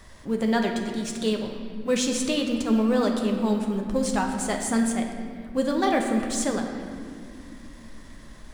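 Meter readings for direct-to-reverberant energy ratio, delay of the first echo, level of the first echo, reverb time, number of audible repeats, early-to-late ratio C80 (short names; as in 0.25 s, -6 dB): 2.0 dB, none, none, 2.3 s, none, 6.0 dB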